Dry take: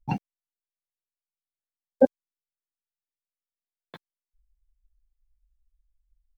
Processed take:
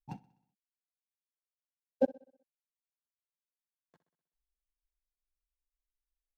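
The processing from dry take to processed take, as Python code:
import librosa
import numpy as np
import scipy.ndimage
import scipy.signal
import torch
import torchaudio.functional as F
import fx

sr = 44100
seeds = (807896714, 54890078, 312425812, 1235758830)

y = scipy.signal.medfilt(x, 15)
y = fx.echo_feedback(y, sr, ms=63, feedback_pct=59, wet_db=-14.0)
y = fx.upward_expand(y, sr, threshold_db=-40.0, expansion=1.5)
y = F.gain(torch.from_numpy(y), -9.0).numpy()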